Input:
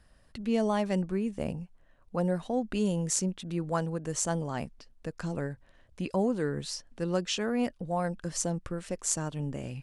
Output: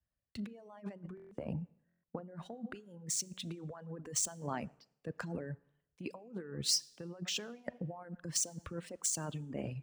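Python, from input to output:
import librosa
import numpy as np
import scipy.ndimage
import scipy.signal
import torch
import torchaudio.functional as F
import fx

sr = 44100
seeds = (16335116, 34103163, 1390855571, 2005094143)

y = scipy.ndimage.median_filter(x, 3, mode='constant')
y = fx.echo_feedback(y, sr, ms=115, feedback_pct=33, wet_db=-21.5)
y = fx.over_compress(y, sr, threshold_db=-36.0, ratio=-1.0)
y = scipy.signal.sosfilt(scipy.signal.butter(2, 89.0, 'highpass', fs=sr, output='sos'), y)
y = fx.rev_schroeder(y, sr, rt60_s=1.7, comb_ms=27, drr_db=11.5)
y = fx.dereverb_blind(y, sr, rt60_s=2.0)
y = fx.buffer_glitch(y, sr, at_s=(1.15, 1.87), block=1024, repeats=6)
y = fx.band_widen(y, sr, depth_pct=100)
y = y * librosa.db_to_amplitude(-5.0)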